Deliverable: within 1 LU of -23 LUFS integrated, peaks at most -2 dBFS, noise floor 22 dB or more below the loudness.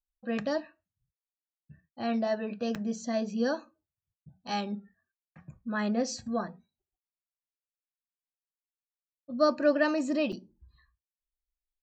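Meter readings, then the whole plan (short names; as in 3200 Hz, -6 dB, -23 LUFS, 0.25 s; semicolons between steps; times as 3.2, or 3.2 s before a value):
dropouts 2; longest dropout 4.9 ms; loudness -31.0 LUFS; peak -13.0 dBFS; loudness target -23.0 LUFS
-> interpolate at 2.75/10.32, 4.9 ms; gain +8 dB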